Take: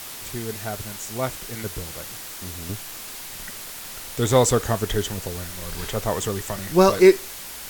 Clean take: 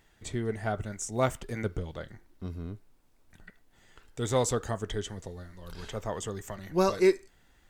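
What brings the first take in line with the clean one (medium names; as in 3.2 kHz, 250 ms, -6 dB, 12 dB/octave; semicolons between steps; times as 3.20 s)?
noise print and reduce 25 dB; gain correction -9.5 dB, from 2.69 s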